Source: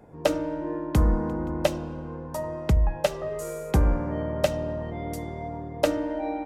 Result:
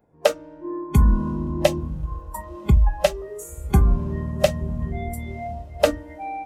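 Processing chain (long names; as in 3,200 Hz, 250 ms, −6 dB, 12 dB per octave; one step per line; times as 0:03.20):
0:01.92–0:02.43: surface crackle 93 per second −54 dBFS
feedback delay with all-pass diffusion 1,021 ms, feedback 51%, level −12 dB
noise reduction from a noise print of the clip's start 18 dB
level +5.5 dB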